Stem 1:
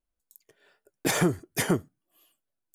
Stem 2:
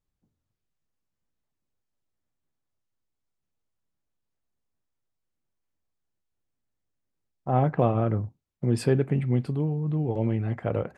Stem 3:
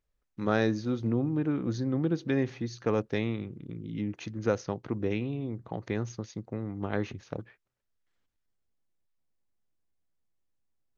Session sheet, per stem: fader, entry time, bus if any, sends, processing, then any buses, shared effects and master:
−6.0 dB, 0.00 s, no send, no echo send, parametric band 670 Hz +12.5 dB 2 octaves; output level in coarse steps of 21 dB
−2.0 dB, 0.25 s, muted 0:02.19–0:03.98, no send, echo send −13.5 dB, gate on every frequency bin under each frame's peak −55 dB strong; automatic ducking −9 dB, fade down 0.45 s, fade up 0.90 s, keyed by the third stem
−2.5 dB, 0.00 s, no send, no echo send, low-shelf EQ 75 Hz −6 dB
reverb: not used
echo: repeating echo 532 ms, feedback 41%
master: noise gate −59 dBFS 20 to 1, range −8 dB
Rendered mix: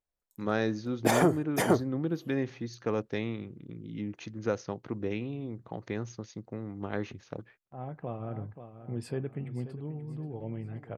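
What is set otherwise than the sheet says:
stem 1: missing output level in coarse steps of 21 dB
stem 2 −2.0 dB → −12.0 dB

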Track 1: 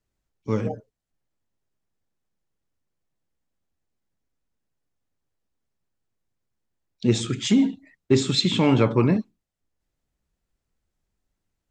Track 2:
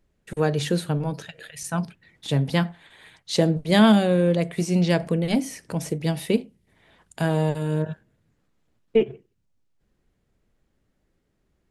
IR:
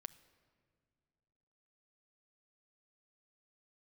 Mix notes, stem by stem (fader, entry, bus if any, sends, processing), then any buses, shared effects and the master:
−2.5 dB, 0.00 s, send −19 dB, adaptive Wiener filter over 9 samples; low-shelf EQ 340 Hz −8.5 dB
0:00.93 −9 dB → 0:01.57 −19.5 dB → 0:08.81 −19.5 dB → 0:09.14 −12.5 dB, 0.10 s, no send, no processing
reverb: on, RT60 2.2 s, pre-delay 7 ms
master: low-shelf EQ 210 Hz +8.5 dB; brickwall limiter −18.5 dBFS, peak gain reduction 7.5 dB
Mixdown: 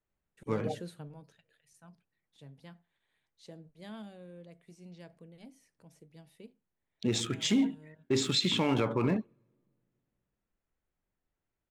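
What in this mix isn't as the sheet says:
stem 2 −9.0 dB → −19.5 dB
master: missing low-shelf EQ 210 Hz +8.5 dB

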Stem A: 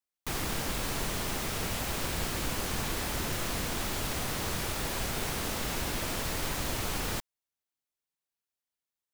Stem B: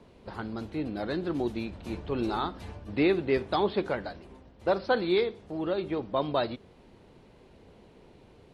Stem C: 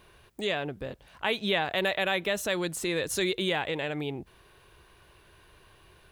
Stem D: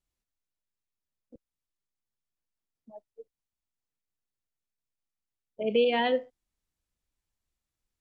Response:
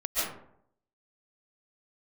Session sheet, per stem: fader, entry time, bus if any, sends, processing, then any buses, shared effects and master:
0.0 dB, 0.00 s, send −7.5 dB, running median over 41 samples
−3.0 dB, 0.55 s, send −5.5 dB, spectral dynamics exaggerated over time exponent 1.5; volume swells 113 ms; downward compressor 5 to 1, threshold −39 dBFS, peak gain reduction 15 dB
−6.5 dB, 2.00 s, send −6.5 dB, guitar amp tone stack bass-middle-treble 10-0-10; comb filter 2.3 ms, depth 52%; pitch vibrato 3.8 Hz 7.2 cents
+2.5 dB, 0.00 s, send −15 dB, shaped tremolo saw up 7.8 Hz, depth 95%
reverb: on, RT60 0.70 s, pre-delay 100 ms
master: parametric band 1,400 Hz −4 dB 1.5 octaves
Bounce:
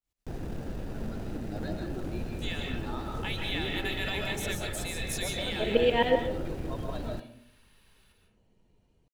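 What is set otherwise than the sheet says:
stem A: send off
master: missing parametric band 1,400 Hz −4 dB 1.5 octaves

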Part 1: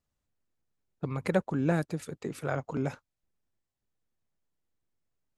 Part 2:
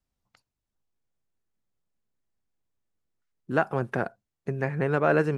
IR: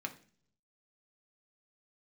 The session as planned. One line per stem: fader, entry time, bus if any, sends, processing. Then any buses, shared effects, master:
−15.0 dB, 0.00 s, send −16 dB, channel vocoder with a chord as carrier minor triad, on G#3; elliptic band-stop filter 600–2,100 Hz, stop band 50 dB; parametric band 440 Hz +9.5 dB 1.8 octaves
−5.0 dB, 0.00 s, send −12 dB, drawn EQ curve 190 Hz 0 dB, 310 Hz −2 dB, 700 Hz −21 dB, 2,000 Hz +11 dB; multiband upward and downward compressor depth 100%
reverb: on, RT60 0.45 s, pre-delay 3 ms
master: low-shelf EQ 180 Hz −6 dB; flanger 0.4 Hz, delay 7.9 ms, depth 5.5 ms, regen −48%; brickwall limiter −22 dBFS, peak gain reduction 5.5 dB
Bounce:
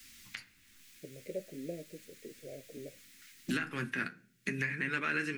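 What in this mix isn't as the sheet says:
stem 1: missing channel vocoder with a chord as carrier minor triad, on G#3
stem 2: send −12 dB → −2 dB

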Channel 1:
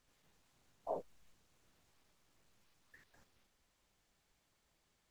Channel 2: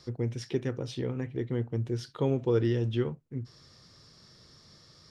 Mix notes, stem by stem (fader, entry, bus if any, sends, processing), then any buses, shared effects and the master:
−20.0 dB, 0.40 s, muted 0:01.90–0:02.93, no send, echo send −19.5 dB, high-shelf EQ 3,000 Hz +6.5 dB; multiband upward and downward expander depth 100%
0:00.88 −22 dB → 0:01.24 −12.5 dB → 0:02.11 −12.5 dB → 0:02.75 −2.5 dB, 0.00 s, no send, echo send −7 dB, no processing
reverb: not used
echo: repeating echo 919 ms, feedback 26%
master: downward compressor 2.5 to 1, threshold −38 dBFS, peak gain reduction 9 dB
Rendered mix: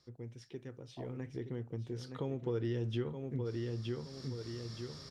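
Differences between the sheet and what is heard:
stem 1: entry 0.40 s → 0.10 s
stem 2 −22.0 dB → −15.0 dB

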